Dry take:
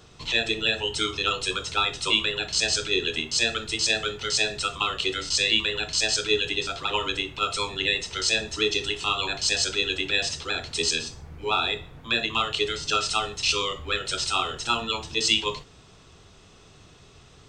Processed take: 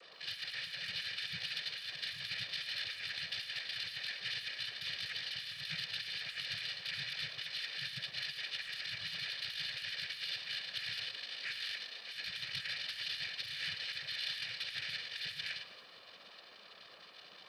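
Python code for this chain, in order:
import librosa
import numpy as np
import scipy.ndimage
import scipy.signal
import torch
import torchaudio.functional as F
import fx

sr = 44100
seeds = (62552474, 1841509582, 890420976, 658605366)

y = fx.tracing_dist(x, sr, depth_ms=0.36)
y = fx.freq_invert(y, sr, carrier_hz=2900)
y = scipy.signal.sosfilt(scipy.signal.cheby2(4, 60, [170.0, 1300.0], 'bandstop', fs=sr, output='sos'), y)
y = fx.low_shelf(y, sr, hz=370.0, db=10.5)
y = fx.dmg_noise_band(y, sr, seeds[0], low_hz=210.0, high_hz=1600.0, level_db=-69.0)
y = fx.noise_vocoder(y, sr, seeds[1], bands=8)
y = 10.0 ** (-34.5 / 20.0) * np.tanh(y / 10.0 ** (-34.5 / 20.0))
y = y + 0.51 * np.pad(y, (int(1.7 * sr / 1000.0), 0))[:len(y)]
y = fx.over_compress(y, sr, threshold_db=-45.0, ratio=-0.5)
y = fx.echo_crushed(y, sr, ms=110, feedback_pct=55, bits=12, wet_db=-13.5)
y = y * 10.0 ** (5.0 / 20.0)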